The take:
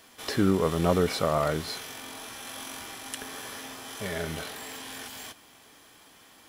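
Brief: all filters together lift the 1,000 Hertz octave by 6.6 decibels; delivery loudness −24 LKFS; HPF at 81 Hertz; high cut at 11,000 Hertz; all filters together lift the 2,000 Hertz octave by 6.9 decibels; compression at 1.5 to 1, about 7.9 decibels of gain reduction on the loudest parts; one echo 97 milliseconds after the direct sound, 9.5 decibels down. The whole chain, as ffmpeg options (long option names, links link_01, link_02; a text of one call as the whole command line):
ffmpeg -i in.wav -af "highpass=81,lowpass=11000,equalizer=frequency=1000:width_type=o:gain=6.5,equalizer=frequency=2000:width_type=o:gain=6.5,acompressor=threshold=-39dB:ratio=1.5,aecho=1:1:97:0.335,volume=10dB" out.wav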